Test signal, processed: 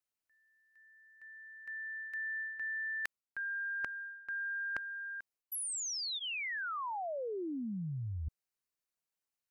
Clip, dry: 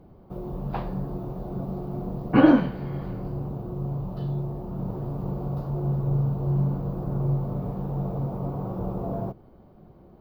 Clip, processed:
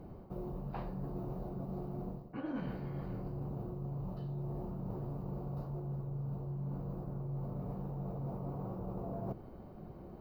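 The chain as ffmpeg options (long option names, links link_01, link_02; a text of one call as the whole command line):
ffmpeg -i in.wav -af "bandreject=frequency=3400:width=8.3,areverse,acompressor=threshold=-38dB:ratio=20,areverse,volume=1.5dB" out.wav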